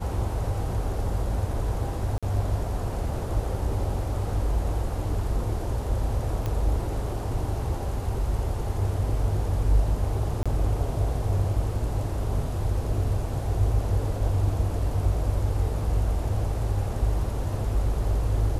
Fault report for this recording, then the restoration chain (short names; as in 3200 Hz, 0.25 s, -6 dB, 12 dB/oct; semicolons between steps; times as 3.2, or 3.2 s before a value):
2.18–2.23 gap 46 ms
6.46 pop -17 dBFS
10.43–10.46 gap 26 ms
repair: de-click; interpolate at 2.18, 46 ms; interpolate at 10.43, 26 ms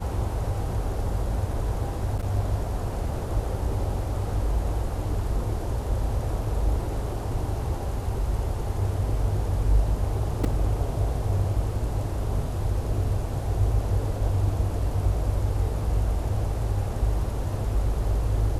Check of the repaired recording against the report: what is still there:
none